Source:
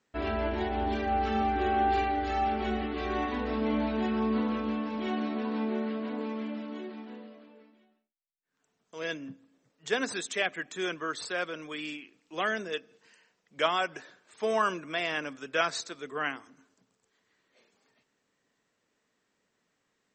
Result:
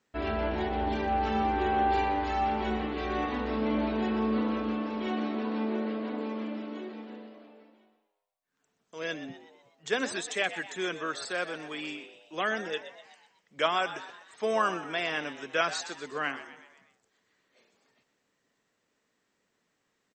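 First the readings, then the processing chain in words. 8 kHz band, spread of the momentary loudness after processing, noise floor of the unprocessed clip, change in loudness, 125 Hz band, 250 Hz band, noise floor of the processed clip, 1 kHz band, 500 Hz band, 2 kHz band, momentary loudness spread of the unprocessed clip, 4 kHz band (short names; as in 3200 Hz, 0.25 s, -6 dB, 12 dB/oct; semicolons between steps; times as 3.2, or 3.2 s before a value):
+0.5 dB, 14 LU, -78 dBFS, 0.0 dB, +0.5 dB, 0.0 dB, -78 dBFS, +0.5 dB, +0.5 dB, +0.5 dB, 12 LU, +0.5 dB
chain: frequency-shifting echo 0.124 s, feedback 51%, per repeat +99 Hz, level -13 dB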